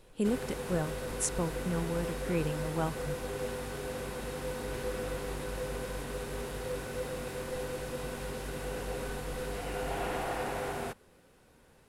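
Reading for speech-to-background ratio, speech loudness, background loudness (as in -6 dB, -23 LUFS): 2.5 dB, -35.0 LUFS, -37.5 LUFS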